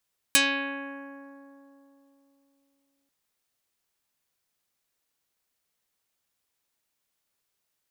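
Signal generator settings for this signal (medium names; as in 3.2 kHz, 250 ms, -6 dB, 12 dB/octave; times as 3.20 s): plucked string C#4, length 2.74 s, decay 3.43 s, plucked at 0.41, dark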